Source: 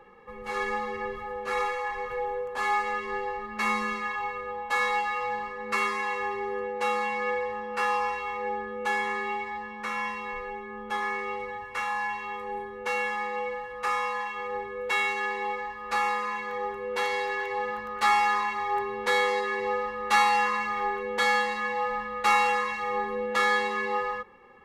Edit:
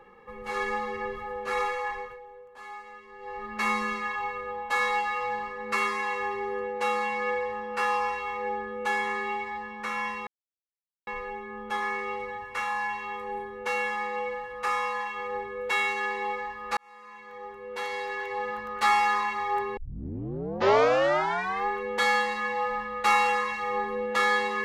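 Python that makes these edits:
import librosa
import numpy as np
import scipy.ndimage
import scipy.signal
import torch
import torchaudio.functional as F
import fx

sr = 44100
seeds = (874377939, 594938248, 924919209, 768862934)

y = fx.edit(x, sr, fx.fade_down_up(start_s=1.9, length_s=1.57, db=-16.0, fade_s=0.29),
    fx.insert_silence(at_s=10.27, length_s=0.8),
    fx.fade_in_span(start_s=15.97, length_s=1.94),
    fx.tape_start(start_s=18.97, length_s=1.9), tone=tone)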